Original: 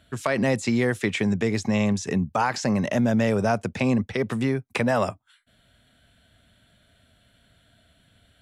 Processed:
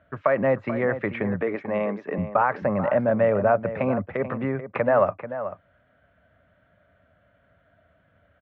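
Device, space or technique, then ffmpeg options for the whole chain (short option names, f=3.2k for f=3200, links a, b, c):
bass cabinet: -filter_complex "[0:a]asettb=1/sr,asplit=3[a][b][c];[a]atrim=end=1.424[d];[b]atrim=start=1.42:end=2.18,asetpts=PTS-STARTPTS,afade=t=in:d=0.004:c=qsin,afade=t=out:st=0.756:d=0.004:c=qsin,highpass=f=220:w=0.5412,highpass=f=220:w=1.3066[e];[c]atrim=start=2.176[f];[d][e]acrossfade=d=0.004:c1=hsin:c2=qsin[g];[g][f]acrossfade=d=0.004:c1=qsin:c2=hsin,highpass=75,equalizer=f=120:t=q:w=4:g=-5,equalizer=f=230:t=q:w=4:g=-7,equalizer=f=370:t=q:w=4:g=-4,equalizer=f=580:t=q:w=4:g=8,equalizer=f=1.2k:t=q:w=4:g=5,lowpass=f=2k:w=0.5412,lowpass=f=2k:w=1.3066,asplit=2[h][i];[i]adelay=437.3,volume=-11dB,highshelf=f=4k:g=-9.84[j];[h][j]amix=inputs=2:normalize=0"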